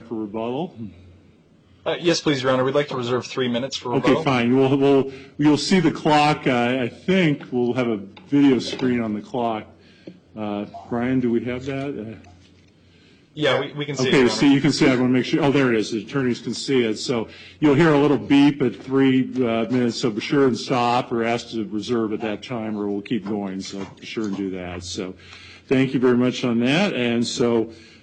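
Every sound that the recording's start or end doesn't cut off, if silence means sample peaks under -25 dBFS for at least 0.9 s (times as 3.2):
1.86–12.11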